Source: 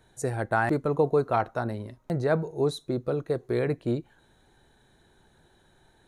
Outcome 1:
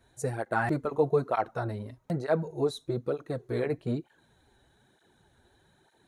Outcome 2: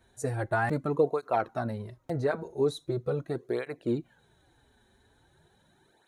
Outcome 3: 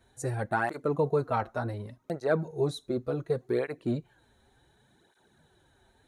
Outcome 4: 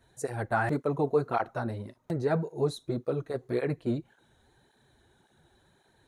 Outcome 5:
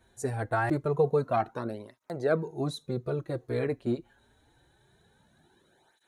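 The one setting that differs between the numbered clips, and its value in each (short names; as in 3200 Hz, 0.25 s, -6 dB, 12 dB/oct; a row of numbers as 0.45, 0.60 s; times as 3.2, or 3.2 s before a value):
tape flanging out of phase, nulls at: 1.1, 0.41, 0.68, 1.8, 0.25 Hz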